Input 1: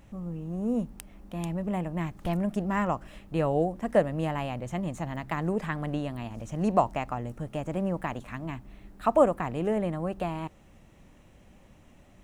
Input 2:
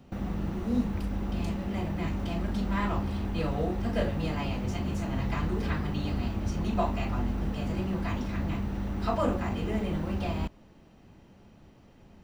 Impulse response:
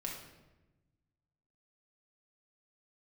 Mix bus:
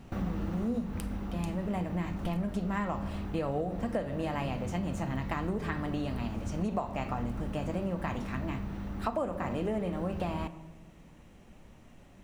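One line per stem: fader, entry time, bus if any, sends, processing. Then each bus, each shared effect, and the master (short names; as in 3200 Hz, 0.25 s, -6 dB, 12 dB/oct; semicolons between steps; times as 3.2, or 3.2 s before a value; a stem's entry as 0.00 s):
-3.5 dB, 0.00 s, send -6 dB, dry
+2.0 dB, 0.00 s, no send, bell 1300 Hz +3 dB; auto duck -8 dB, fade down 1.40 s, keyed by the first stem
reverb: on, RT60 1.1 s, pre-delay 4 ms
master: compressor 10:1, threshold -28 dBFS, peak gain reduction 12.5 dB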